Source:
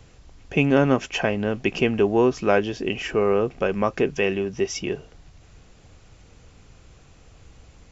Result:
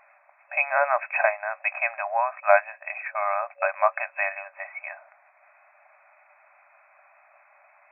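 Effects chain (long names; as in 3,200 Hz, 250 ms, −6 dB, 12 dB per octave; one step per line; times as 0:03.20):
0:02.40–0:03.78: noise gate −29 dBFS, range −13 dB
brick-wall band-pass 570–2,600 Hz
level +4.5 dB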